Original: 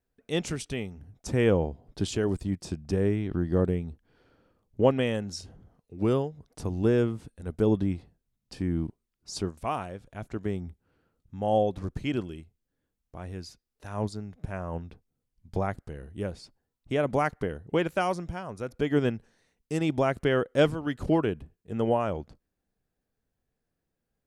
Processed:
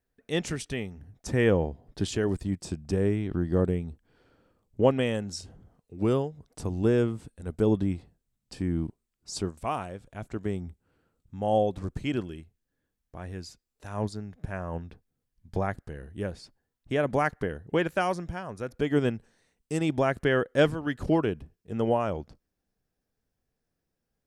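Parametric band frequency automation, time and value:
parametric band +6 dB 0.22 octaves
1,800 Hz
from 0:02.46 7,900 Hz
from 0:12.14 1,700 Hz
from 0:13.38 7,500 Hz
from 0:13.97 1,700 Hz
from 0:18.81 8,200 Hz
from 0:19.90 1,700 Hz
from 0:21.03 5,400 Hz

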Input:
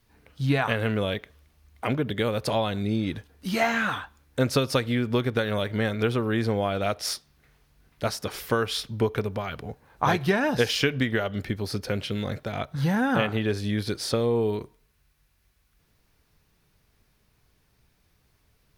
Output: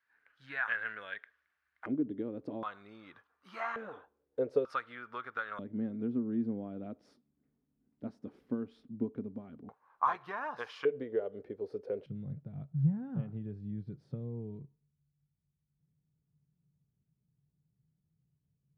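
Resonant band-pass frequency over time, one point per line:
resonant band-pass, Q 5.5
1,600 Hz
from 0:01.86 290 Hz
from 0:02.63 1,200 Hz
from 0:03.76 450 Hz
from 0:04.65 1,300 Hz
from 0:05.59 250 Hz
from 0:09.69 1,100 Hz
from 0:10.85 450 Hz
from 0:12.06 150 Hz

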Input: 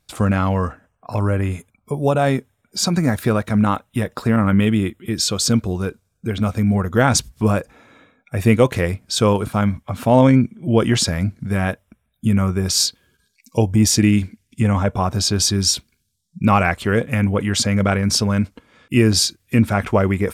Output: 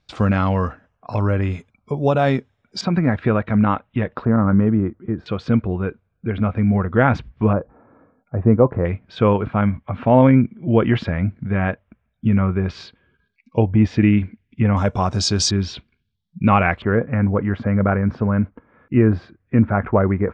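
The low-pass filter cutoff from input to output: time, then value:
low-pass filter 24 dB per octave
5,200 Hz
from 0:02.81 2,800 Hz
from 0:04.25 1,400 Hz
from 0:05.26 2,500 Hz
from 0:07.53 1,200 Hz
from 0:08.85 2,600 Hz
from 0:14.77 6,700 Hz
from 0:15.51 3,200 Hz
from 0:16.82 1,700 Hz

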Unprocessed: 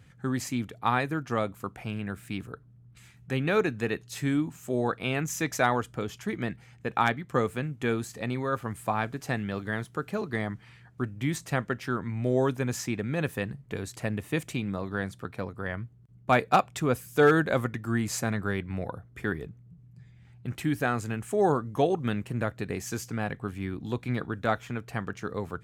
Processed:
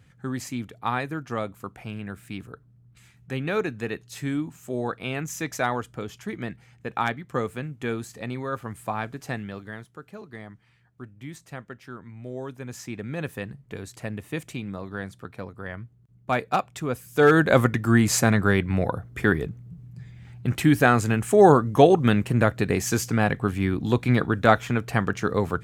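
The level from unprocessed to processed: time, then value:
0:09.34 −1 dB
0:09.97 −10 dB
0:12.46 −10 dB
0:13.07 −2 dB
0:16.98 −2 dB
0:17.60 +9.5 dB

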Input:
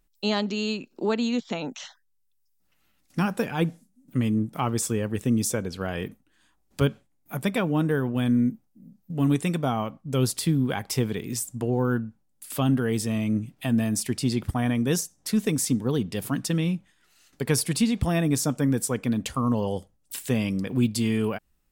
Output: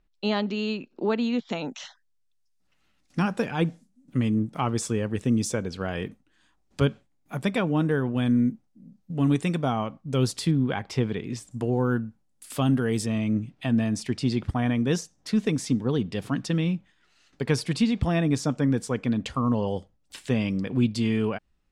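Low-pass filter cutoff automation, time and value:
3,500 Hz
from 0:01.49 7,000 Hz
from 0:10.51 3,800 Hz
from 0:11.51 9,500 Hz
from 0:13.06 4,900 Hz

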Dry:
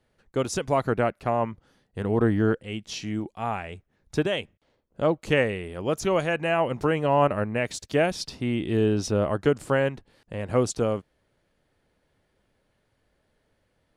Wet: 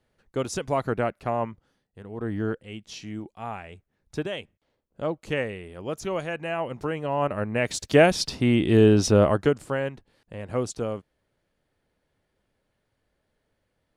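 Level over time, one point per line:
0:01.43 −2 dB
0:02.10 −15 dB
0:02.35 −5.5 dB
0:07.17 −5.5 dB
0:07.87 +6 dB
0:09.25 +6 dB
0:09.67 −4.5 dB

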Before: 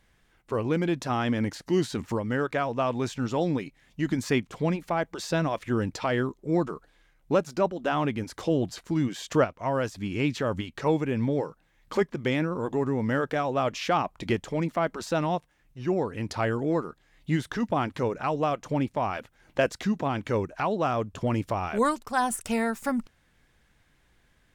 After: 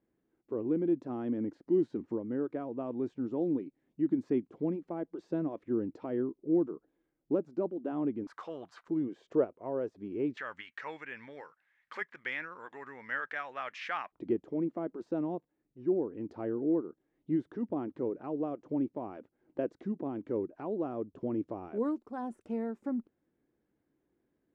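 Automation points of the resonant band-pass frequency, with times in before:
resonant band-pass, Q 2.8
320 Hz
from 0:08.27 1,200 Hz
from 0:08.88 390 Hz
from 0:10.37 1,800 Hz
from 0:14.12 330 Hz

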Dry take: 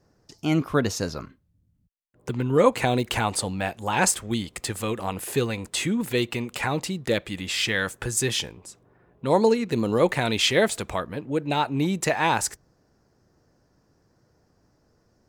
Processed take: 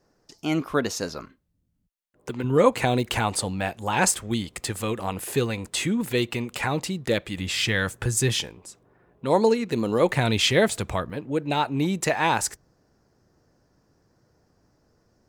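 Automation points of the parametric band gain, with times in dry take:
parametric band 98 Hz 1.7 octaves
−9.5 dB
from 0:02.44 +1 dB
from 0:07.37 +7.5 dB
from 0:08.41 −3 dB
from 0:10.12 +7 dB
from 0:11.10 −0.5 dB

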